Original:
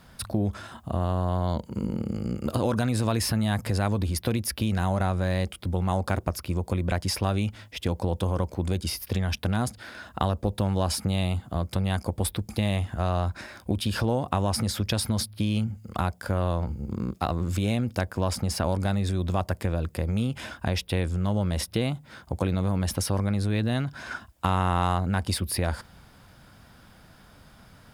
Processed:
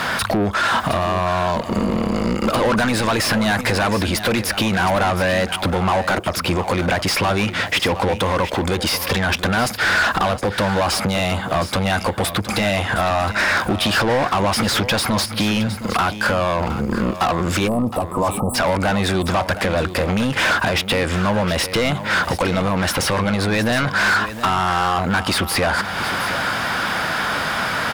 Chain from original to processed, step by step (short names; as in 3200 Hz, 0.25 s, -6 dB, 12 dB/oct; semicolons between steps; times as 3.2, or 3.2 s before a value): compressor 3:1, threshold -41 dBFS, peak gain reduction 17 dB; bell 1600 Hz +4.5 dB 1.8 oct; overdrive pedal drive 34 dB, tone 3600 Hz, clips at -16.5 dBFS; spectral delete 17.68–18.55, 1300–7600 Hz; on a send: echo 0.715 s -12 dB; on the sum: gain +8 dB